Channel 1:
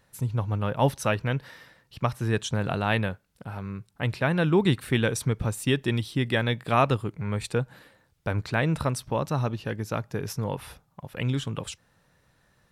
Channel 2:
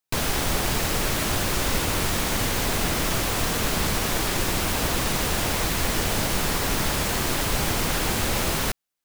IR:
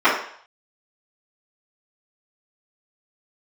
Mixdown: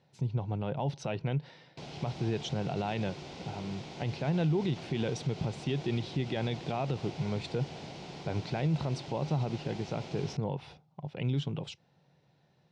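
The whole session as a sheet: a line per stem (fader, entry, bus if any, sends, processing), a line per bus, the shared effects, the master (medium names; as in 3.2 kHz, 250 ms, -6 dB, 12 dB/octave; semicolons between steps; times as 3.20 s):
-4.0 dB, 0.00 s, no send, peak limiter -16.5 dBFS, peak gain reduction 7 dB
-19.0 dB, 1.65 s, no send, none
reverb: none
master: cabinet simulation 110–5300 Hz, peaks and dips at 150 Hz +10 dB, 370 Hz +5 dB, 750 Hz +6 dB, 1.2 kHz -9 dB, 1.7 kHz -9 dB; peak limiter -22 dBFS, peak gain reduction 7 dB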